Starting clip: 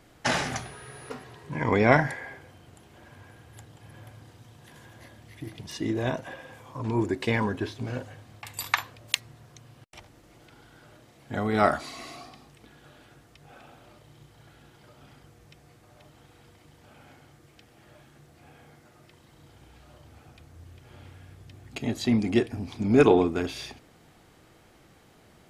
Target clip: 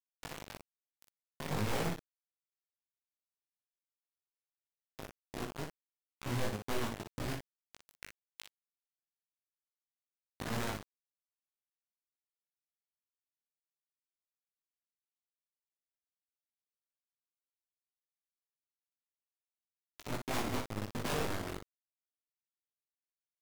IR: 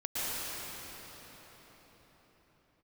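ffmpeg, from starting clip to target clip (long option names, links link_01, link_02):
-filter_complex "[0:a]lowpass=frequency=1200:poles=1,equalizer=frequency=470:width=3.8:gain=-11.5,bandreject=frequency=50:width_type=h:width=6,bandreject=frequency=100:width_type=h:width=6,bandreject=frequency=150:width_type=h:width=6,bandreject=frequency=200:width_type=h:width=6,bandreject=frequency=250:width_type=h:width=6,bandreject=frequency=300:width_type=h:width=6,acrossover=split=220[link_01][link_02];[link_01]aeval=exprs='(mod(20*val(0)+1,2)-1)/20':channel_layout=same[link_03];[link_02]acompressor=threshold=-41dB:ratio=20[link_04];[link_03][link_04]amix=inputs=2:normalize=0,flanger=delay=18:depth=6.6:speed=0.45,acrusher=bits=9:mode=log:mix=0:aa=0.000001,aeval=exprs='0.0631*(cos(1*acos(clip(val(0)/0.0631,-1,1)))-cos(1*PI/2))+0.00355*(cos(3*acos(clip(val(0)/0.0631,-1,1)))-cos(3*PI/2))+0.00141*(cos(4*acos(clip(val(0)/0.0631,-1,1)))-cos(4*PI/2))+0.00398*(cos(6*acos(clip(val(0)/0.0631,-1,1)))-cos(6*PI/2))':channel_layout=same,acrusher=bits=5:mix=0:aa=0.000001,aecho=1:1:21|52|64:0.562|0.168|0.501,asetrate=48000,aresample=44100,volume=-2dB"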